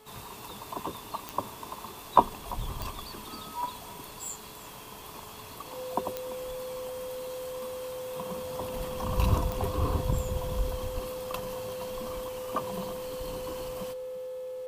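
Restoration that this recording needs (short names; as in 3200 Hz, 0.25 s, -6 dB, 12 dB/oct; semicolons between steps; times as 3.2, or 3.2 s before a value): de-click; de-hum 431.1 Hz, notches 10; notch 510 Hz, Q 30; inverse comb 0.342 s -19 dB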